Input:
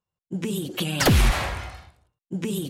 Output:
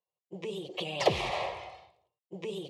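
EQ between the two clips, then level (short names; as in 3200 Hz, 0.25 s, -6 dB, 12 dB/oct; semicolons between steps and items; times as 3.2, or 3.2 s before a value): BPF 280–2900 Hz; bell 850 Hz -2.5 dB 0.21 oct; fixed phaser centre 620 Hz, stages 4; 0.0 dB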